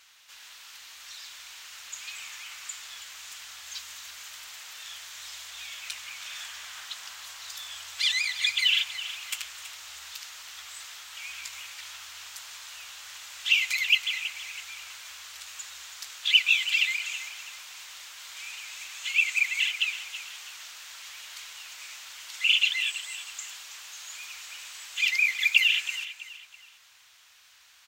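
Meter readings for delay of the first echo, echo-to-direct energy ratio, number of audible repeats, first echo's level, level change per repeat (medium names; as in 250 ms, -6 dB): 326 ms, -12.5 dB, 3, -13.0 dB, -9.5 dB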